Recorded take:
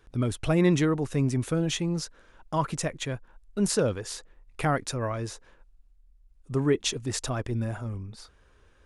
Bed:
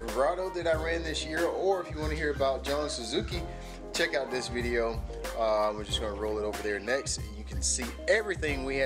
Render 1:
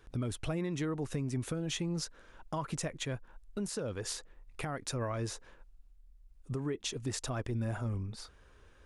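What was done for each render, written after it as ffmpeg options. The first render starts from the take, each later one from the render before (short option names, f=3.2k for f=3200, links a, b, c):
-af "acompressor=threshold=-28dB:ratio=10,alimiter=level_in=2dB:limit=-24dB:level=0:latency=1:release=317,volume=-2dB"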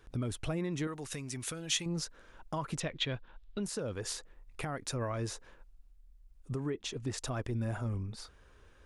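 -filter_complex "[0:a]asettb=1/sr,asplit=3[a][b][c];[a]atrim=end=0.874[d];[b]atrim=start=0.87:end=1.86,asetpts=PTS-STARTPTS,afade=t=in:d=0.004:c=qsin,afade=t=out:st=0.986:d=0.004:c=qsin,tiltshelf=f=1.2k:g=-8[e];[c]atrim=start=1.856[f];[d][e]acrossfade=d=0.004:c1=hsin:c2=qsin[g];[g][f]acrossfade=d=0.004:c1=qsin:c2=hsin,asettb=1/sr,asplit=3[h][i][j];[h]atrim=end=2.804[k];[i]atrim=start=2.8:end=3.63,asetpts=PTS-STARTPTS,afade=t=in:d=0.004:c=qsin,afade=t=out:st=0.826:d=0.004:c=qsin,lowpass=f=3.6k:t=q:w=2.8[l];[j]atrim=start=3.626[m];[k][l]acrossfade=d=0.004:c1=hsin:c2=qsin[n];[n][m]acrossfade=d=0.004:c1=qsin:c2=hsin,asettb=1/sr,asplit=3[o][p][q];[o]atrim=end=6.704[r];[p]atrim=start=6.7:end=7.18,asetpts=PTS-STARTPTS,afade=t=in:d=0.004:c=qsin,afade=t=out:st=0.476:d=0.004:c=qsin,highshelf=f=7.3k:g=-10.5[s];[q]atrim=start=7.176[t];[r][s]acrossfade=d=0.004:c1=hsin:c2=qsin[u];[u][t]acrossfade=d=0.004:c1=qsin:c2=hsin"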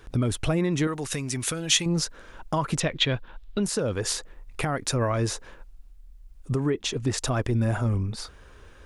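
-af "volume=10.5dB"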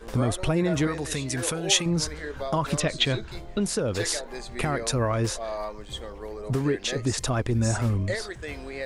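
-filter_complex "[1:a]volume=-5.5dB[a];[0:a][a]amix=inputs=2:normalize=0"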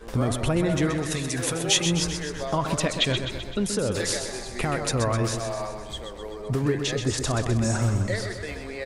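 -af "aecho=1:1:128|256|384|512|640|768|896|1024:0.422|0.249|0.147|0.0866|0.0511|0.0301|0.0178|0.0105"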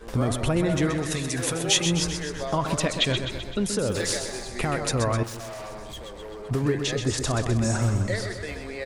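-filter_complex "[0:a]asettb=1/sr,asplit=3[a][b][c];[a]atrim=end=3.884[d];[b]atrim=start=3.88:end=4.48,asetpts=PTS-STARTPTS,afade=t=in:d=0.004:c=qsin,afade=t=out:st=0.596:d=0.004:c=qsin,acrusher=bits=8:mode=log:mix=0:aa=0.000001[e];[c]atrim=start=4.476[f];[d][e]acrossfade=d=0.004:c1=hsin:c2=qsin[g];[g][f]acrossfade=d=0.004:c1=qsin:c2=hsin,asettb=1/sr,asplit=3[h][i][j];[h]atrim=end=5.234[k];[i]atrim=start=5.23:end=6.51,asetpts=PTS-STARTPTS,afade=t=in:d=0.004:c=qsin,afade=t=out:st=1.276:d=0.004:c=qsin,volume=35dB,asoftclip=hard,volume=-35dB[l];[j]atrim=start=6.506[m];[k][l]acrossfade=d=0.004:c1=hsin:c2=qsin[n];[n][m]acrossfade=d=0.004:c1=qsin:c2=hsin"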